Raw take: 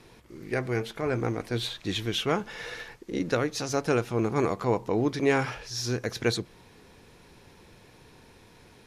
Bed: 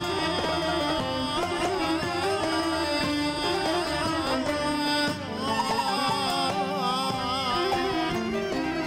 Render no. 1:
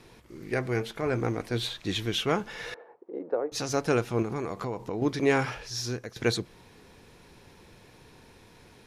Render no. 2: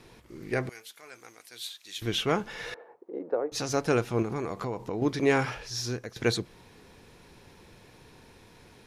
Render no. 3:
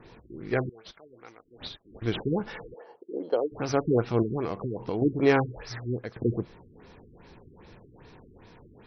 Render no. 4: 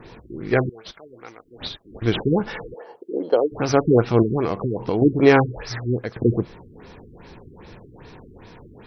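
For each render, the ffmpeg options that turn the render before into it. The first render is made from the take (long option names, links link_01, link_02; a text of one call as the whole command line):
ffmpeg -i in.wav -filter_complex "[0:a]asettb=1/sr,asplit=3[link_01][link_02][link_03];[link_01]atrim=end=2.744[link_04];[link_02]atrim=start=2.74:end=3.52,asetpts=PTS-STARTPTS,afade=type=in:duration=0.004:curve=qsin,afade=type=out:start_time=0.776:duration=0.004:curve=qsin,asuperpass=centerf=590:order=4:qfactor=1.1[link_05];[link_03]atrim=start=3.516[link_06];[link_04][link_05]acrossfade=duration=0.004:curve1=hsin:curve2=qsin[link_07];[link_07][link_06]acrossfade=duration=0.004:curve1=qsin:curve2=hsin,asettb=1/sr,asplit=3[link_08][link_09][link_10];[link_08]atrim=end=4.224[link_11];[link_09]atrim=start=4.22:end=5.02,asetpts=PTS-STARTPTS,afade=type=in:duration=0.004:curve=qsin,afade=type=out:start_time=0.796:duration=0.004:curve=qsin,acompressor=threshold=-28dB:ratio=6:attack=3.2:release=140:knee=1:detection=peak[link_12];[link_10]atrim=start=5.016[link_13];[link_11][link_12]acrossfade=duration=0.004:curve1=hsin:curve2=qsin[link_14];[link_14][link_13]acrossfade=duration=0.004:curve1=qsin:curve2=hsin,asplit=2[link_15][link_16];[link_15]atrim=end=6.16,asetpts=PTS-STARTPTS,afade=type=out:start_time=5.75:duration=0.41:silence=0.177828[link_17];[link_16]atrim=start=6.16,asetpts=PTS-STARTPTS,afade=type=in:duration=0.004:curve=hsin:silence=0.177828[link_18];[link_17][link_18]concat=n=2:v=0:a=1" out.wav
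ffmpeg -i in.wav -filter_complex "[0:a]asettb=1/sr,asplit=3[link_01][link_02][link_03];[link_01]atrim=end=0.694[link_04];[link_02]atrim=start=0.69:end=2.02,asetpts=PTS-STARTPTS,afade=type=in:duration=0.004:curve=qsin,afade=type=out:start_time=1.326:duration=0.004:curve=qsin,aderivative[link_05];[link_03]atrim=start=2.016[link_06];[link_04][link_05]acrossfade=duration=0.004:curve1=hsin:curve2=qsin[link_07];[link_07][link_06]acrossfade=duration=0.004:curve1=qsin:curve2=hsin" out.wav
ffmpeg -i in.wav -filter_complex "[0:a]asplit=2[link_01][link_02];[link_02]acrusher=samples=12:mix=1:aa=0.000001,volume=-8dB[link_03];[link_01][link_03]amix=inputs=2:normalize=0,afftfilt=real='re*lt(b*sr/1024,410*pow(6300/410,0.5+0.5*sin(2*PI*2.5*pts/sr)))':imag='im*lt(b*sr/1024,410*pow(6300/410,0.5+0.5*sin(2*PI*2.5*pts/sr)))':win_size=1024:overlap=0.75" out.wav
ffmpeg -i in.wav -af "volume=8dB,alimiter=limit=-2dB:level=0:latency=1" out.wav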